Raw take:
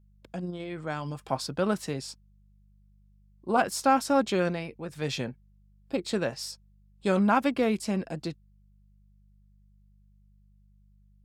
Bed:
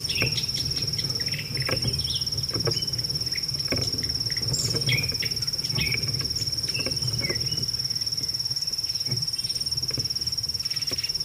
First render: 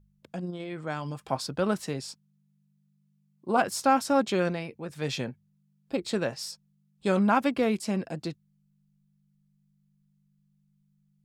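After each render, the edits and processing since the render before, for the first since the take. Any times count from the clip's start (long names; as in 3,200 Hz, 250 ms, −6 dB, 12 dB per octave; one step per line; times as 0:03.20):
hum removal 50 Hz, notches 2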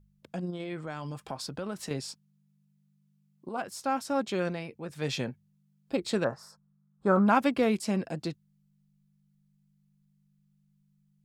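0:00.79–0:01.91: downward compressor 3 to 1, threshold −34 dBFS
0:03.49–0:05.27: fade in, from −12 dB
0:06.24–0:07.27: high shelf with overshoot 1,900 Hz −13.5 dB, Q 3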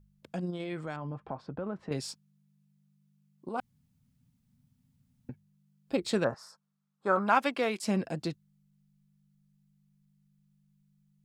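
0:00.96–0:01.92: low-pass filter 1,300 Hz
0:03.60–0:05.29: fill with room tone
0:06.34–0:07.83: meter weighting curve A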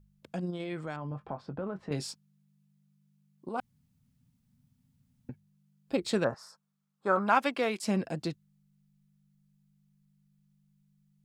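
0:01.09–0:02.07: double-tracking delay 21 ms −10 dB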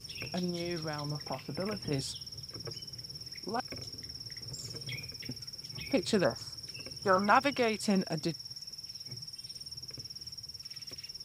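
mix in bed −17 dB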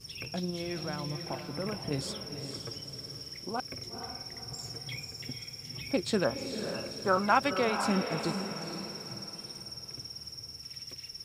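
feedback delay with all-pass diffusion 485 ms, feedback 43%, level −7 dB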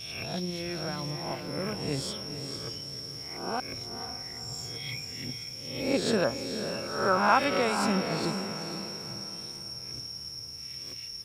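peak hold with a rise ahead of every peak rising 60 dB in 0.72 s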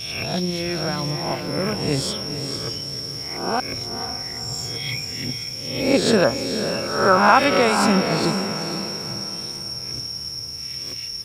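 level +9.5 dB
brickwall limiter −2 dBFS, peak gain reduction 2.5 dB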